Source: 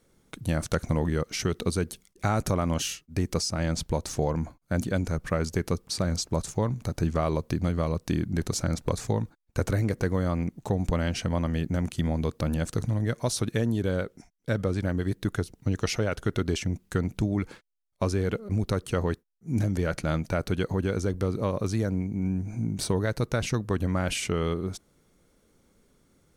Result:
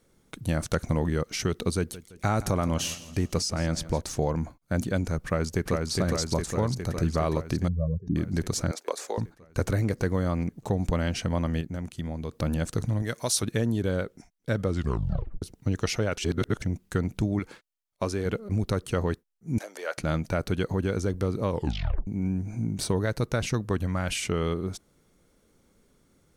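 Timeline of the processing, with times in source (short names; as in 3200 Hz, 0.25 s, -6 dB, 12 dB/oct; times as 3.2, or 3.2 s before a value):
1.77–4.02 feedback echo 0.166 s, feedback 48%, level -16.5 dB
5.24–5.92 echo throw 0.41 s, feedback 70%, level -2.5 dB
7.68–8.16 spectral contrast raised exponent 2.9
8.71–9.18 HPF 400 Hz 24 dB/oct
11.61–12.32 gain -6.5 dB
13.02–13.43 tilt +2 dB/oct
14.69 tape stop 0.73 s
16.18–16.62 reverse
17.39–18.26 low shelf 170 Hz -8 dB
19.58–19.98 HPF 510 Hz 24 dB/oct
21.49 tape stop 0.58 s
23.78–24.24 bell 360 Hz -5.5 dB 1.6 oct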